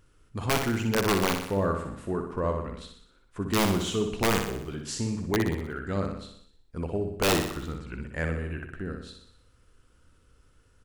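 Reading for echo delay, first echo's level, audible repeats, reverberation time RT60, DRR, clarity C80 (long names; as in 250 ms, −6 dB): 61 ms, −6.0 dB, 6, no reverb audible, no reverb audible, no reverb audible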